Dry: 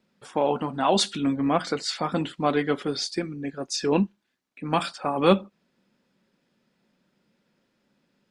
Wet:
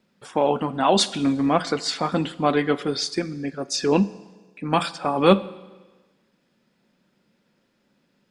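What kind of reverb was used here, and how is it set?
Schroeder reverb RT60 1.3 s, combs from 33 ms, DRR 17.5 dB; gain +3 dB

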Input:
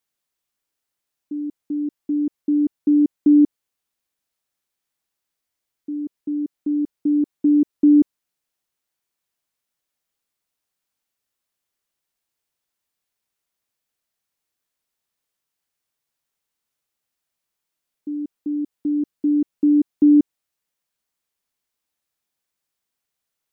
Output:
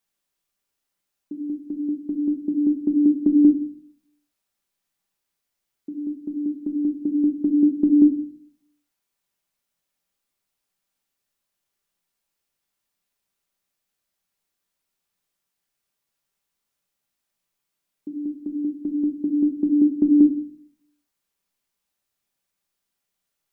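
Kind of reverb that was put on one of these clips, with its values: shoebox room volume 450 m³, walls furnished, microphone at 1.2 m

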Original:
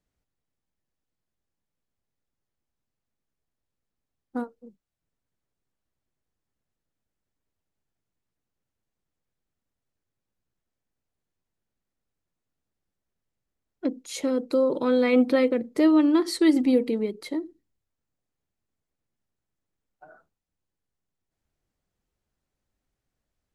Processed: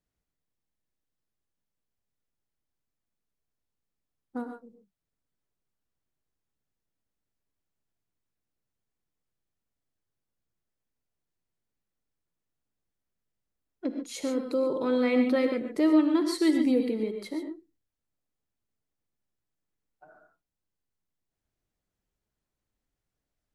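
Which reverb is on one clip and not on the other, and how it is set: non-linear reverb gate 0.16 s rising, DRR 5.5 dB; gain -4.5 dB

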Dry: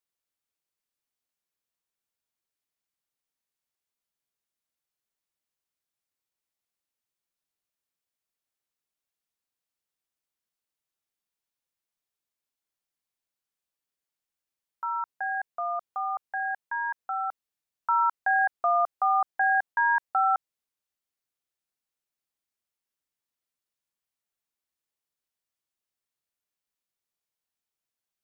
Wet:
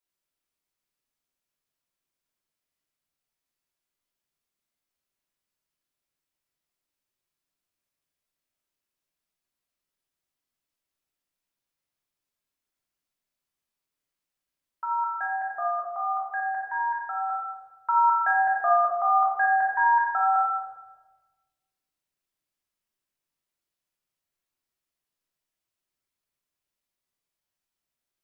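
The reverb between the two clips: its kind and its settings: shoebox room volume 790 m³, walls mixed, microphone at 2.9 m; gain -3.5 dB

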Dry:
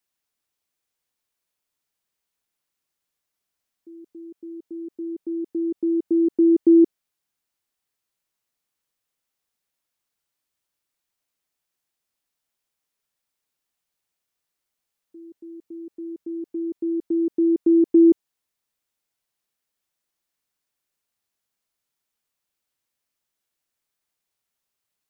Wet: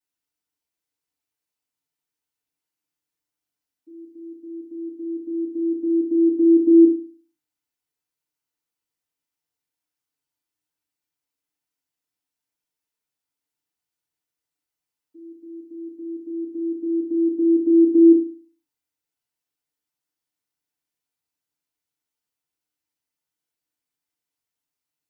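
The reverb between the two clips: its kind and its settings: FDN reverb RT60 0.37 s, low-frequency decay 1.3×, high-frequency decay 0.95×, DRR -9 dB; gain -14.5 dB

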